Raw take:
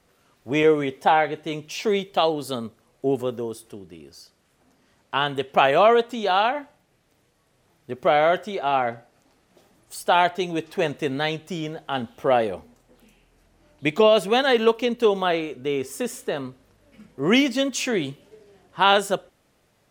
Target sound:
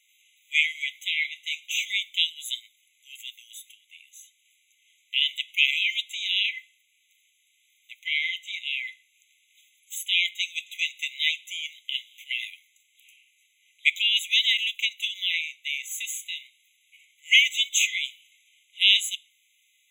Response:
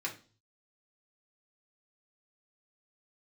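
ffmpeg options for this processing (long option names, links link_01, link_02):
-filter_complex "[0:a]asettb=1/sr,asplit=3[link_01][link_02][link_03];[link_01]atrim=end=7.994[link_04];[link_02]atrim=start=7.99:end=8.54,asetpts=PTS-STARTPTS,afade=type=in:duration=0.004:curve=qsin,afade=type=out:start_time=0.546:duration=0.004:curve=qsin,highshelf=frequency=5700:gain=-6.5[link_05];[link_03]atrim=start=8.536[link_06];[link_04][link_05]acrossfade=duration=0.004:curve1=hsin:curve2=qsin[link_07];[link_07][link_06]acrossfade=duration=0.004:curve1=qsin:curve2=hsin,afftfilt=real='re*eq(mod(floor(b*sr/1024/2000),2),1)':imag='im*eq(mod(floor(b*sr/1024/2000),2),1)':win_size=1024:overlap=0.75,volume=7dB"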